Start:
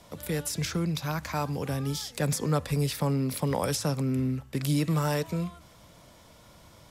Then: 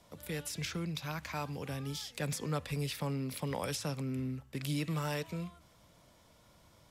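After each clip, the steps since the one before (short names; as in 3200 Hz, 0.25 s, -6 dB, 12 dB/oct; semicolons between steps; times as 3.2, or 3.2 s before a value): dynamic EQ 2700 Hz, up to +7 dB, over -50 dBFS, Q 1.1; gain -9 dB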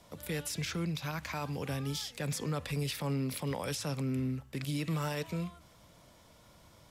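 limiter -29.5 dBFS, peak gain reduction 9 dB; gain +3.5 dB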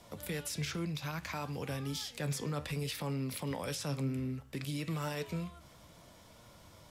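in parallel at +1 dB: compressor, threshold -44 dBFS, peak gain reduction 13 dB; on the sum: flange 0.62 Hz, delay 8.2 ms, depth 6.8 ms, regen +73%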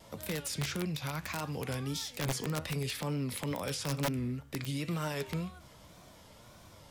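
wow and flutter 100 cents; wrapped overs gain 28 dB; gain +2 dB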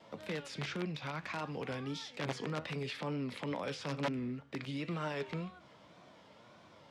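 BPF 180–3500 Hz; gain -1 dB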